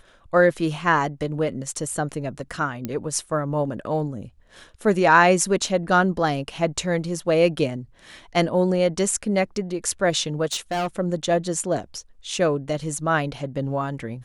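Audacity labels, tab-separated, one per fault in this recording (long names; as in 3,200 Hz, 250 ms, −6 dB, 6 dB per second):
2.850000	2.850000	click −14 dBFS
10.520000	10.870000	clipping −21.5 dBFS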